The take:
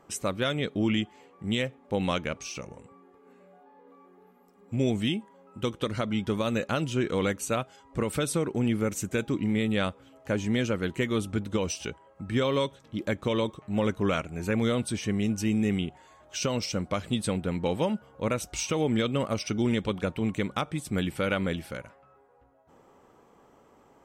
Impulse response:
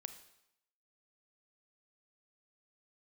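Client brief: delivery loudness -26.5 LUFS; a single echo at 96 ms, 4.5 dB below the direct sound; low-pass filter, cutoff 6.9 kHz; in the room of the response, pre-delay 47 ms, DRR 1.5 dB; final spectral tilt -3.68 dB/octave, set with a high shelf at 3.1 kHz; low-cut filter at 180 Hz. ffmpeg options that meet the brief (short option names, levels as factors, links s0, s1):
-filter_complex "[0:a]highpass=180,lowpass=6900,highshelf=f=3100:g=8,aecho=1:1:96:0.596,asplit=2[s0][s1];[1:a]atrim=start_sample=2205,adelay=47[s2];[s1][s2]afir=irnorm=-1:irlink=0,volume=1.33[s3];[s0][s3]amix=inputs=2:normalize=0,volume=0.944"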